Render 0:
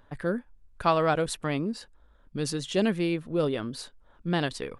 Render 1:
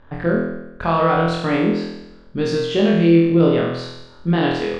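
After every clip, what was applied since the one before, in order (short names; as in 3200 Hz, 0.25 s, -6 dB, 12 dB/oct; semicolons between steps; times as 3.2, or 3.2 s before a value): limiter -19.5 dBFS, peak gain reduction 9 dB; air absorption 190 m; on a send: flutter echo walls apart 4.1 m, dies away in 0.92 s; on the sum: gain +8 dB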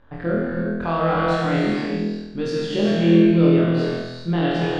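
non-linear reverb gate 0.43 s flat, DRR -1.5 dB; gain -6 dB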